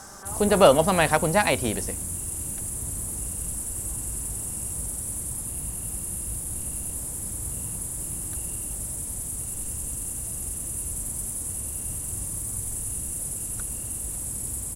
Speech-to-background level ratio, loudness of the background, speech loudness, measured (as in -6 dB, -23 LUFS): 8.5 dB, -29.5 LUFS, -21.0 LUFS